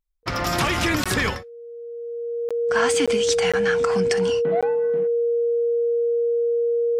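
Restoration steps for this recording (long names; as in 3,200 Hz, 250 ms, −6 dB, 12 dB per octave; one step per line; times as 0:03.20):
notch filter 470 Hz, Q 30
repair the gap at 0:01.04/0:02.49/0:03.06/0:03.52/0:04.61, 16 ms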